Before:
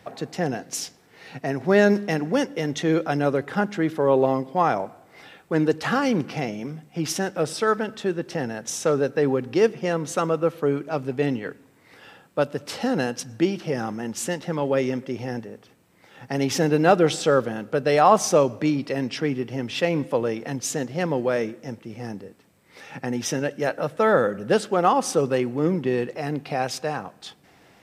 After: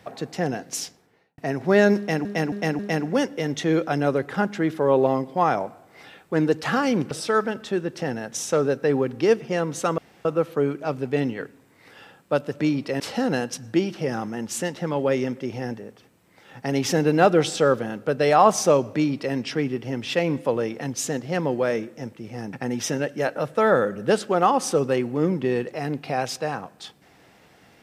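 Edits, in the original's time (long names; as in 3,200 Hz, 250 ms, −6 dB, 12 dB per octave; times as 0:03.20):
0:00.83–0:01.38: fade out and dull
0:01.98–0:02.25: repeat, 4 plays
0:06.30–0:07.44: remove
0:10.31: splice in room tone 0.27 s
0:18.61–0:19.01: duplicate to 0:12.66
0:22.19–0:22.95: remove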